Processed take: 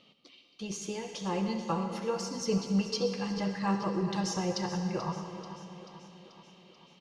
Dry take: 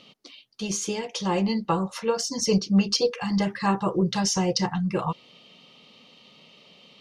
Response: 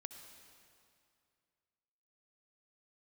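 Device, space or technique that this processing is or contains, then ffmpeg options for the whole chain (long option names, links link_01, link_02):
swimming-pool hall: -filter_complex "[1:a]atrim=start_sample=2205[link_01];[0:a][link_01]afir=irnorm=-1:irlink=0,highshelf=frequency=4600:gain=-6,aecho=1:1:436|872|1308|1744|2180|2616:0.211|0.125|0.0736|0.0434|0.0256|0.0151,volume=-2.5dB"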